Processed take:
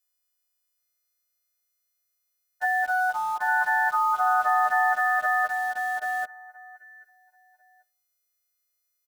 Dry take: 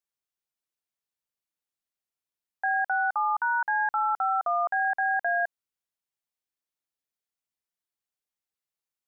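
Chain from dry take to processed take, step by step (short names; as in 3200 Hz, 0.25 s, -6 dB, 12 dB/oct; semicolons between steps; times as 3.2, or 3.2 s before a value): frequency quantiser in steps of 3 st; 2.65–3.47 bell 920 Hz -> 1400 Hz -9.5 dB 0.44 oct; feedback echo 0.786 s, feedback 18%, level -5 dB; on a send at -15.5 dB: reverb RT60 0.45 s, pre-delay 3 ms; 6.76–7.09 on the sum: spectral gain 440–1400 Hz -15 dB; in parallel at -9 dB: requantised 6-bit, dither none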